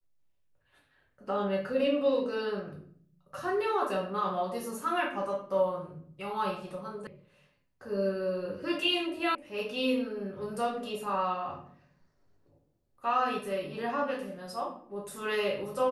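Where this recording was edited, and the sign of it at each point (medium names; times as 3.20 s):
7.07 s: sound stops dead
9.35 s: sound stops dead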